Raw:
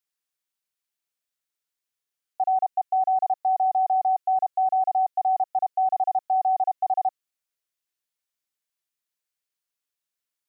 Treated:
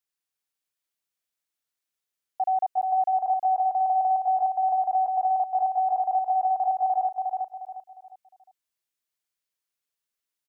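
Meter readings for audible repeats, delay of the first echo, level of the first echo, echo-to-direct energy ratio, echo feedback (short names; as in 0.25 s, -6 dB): 4, 0.356 s, -3.5 dB, -3.0 dB, 34%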